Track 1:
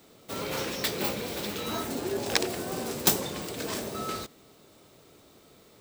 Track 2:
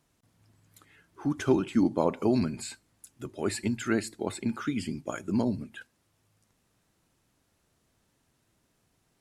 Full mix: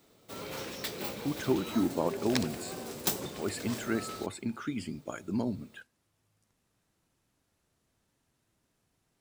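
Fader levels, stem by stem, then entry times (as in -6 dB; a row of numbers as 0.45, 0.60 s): -7.5, -4.5 dB; 0.00, 0.00 s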